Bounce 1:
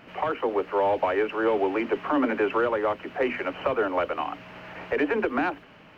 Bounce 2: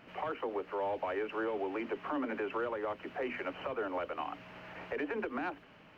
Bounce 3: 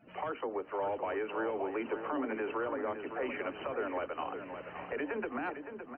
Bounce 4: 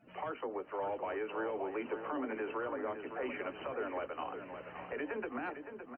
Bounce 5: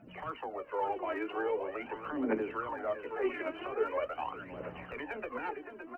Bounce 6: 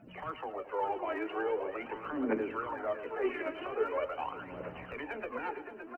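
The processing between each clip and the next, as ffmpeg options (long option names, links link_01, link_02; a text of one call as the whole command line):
ffmpeg -i in.wav -af "alimiter=limit=-20dB:level=0:latency=1:release=186,volume=-7dB" out.wav
ffmpeg -i in.wav -filter_complex "[0:a]afftdn=noise_reduction=23:noise_floor=-54,asplit=2[link_01][link_02];[link_02]adelay=564,lowpass=frequency=2500:poles=1,volume=-8dB,asplit=2[link_03][link_04];[link_04]adelay=564,lowpass=frequency=2500:poles=1,volume=0.48,asplit=2[link_05][link_06];[link_06]adelay=564,lowpass=frequency=2500:poles=1,volume=0.48,asplit=2[link_07][link_08];[link_08]adelay=564,lowpass=frequency=2500:poles=1,volume=0.48,asplit=2[link_09][link_10];[link_10]adelay=564,lowpass=frequency=2500:poles=1,volume=0.48,asplit=2[link_11][link_12];[link_12]adelay=564,lowpass=frequency=2500:poles=1,volume=0.48[link_13];[link_01][link_03][link_05][link_07][link_09][link_11][link_13]amix=inputs=7:normalize=0" out.wav
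ffmpeg -i in.wav -filter_complex "[0:a]asplit=2[link_01][link_02];[link_02]adelay=16,volume=-13dB[link_03];[link_01][link_03]amix=inputs=2:normalize=0,volume=-3dB" out.wav
ffmpeg -i in.wav -af "aphaser=in_gain=1:out_gain=1:delay=3.2:decay=0.71:speed=0.43:type=triangular" out.wav
ffmpeg -i in.wav -af "aecho=1:1:110|220|330|440|550:0.2|0.102|0.0519|0.0265|0.0135" out.wav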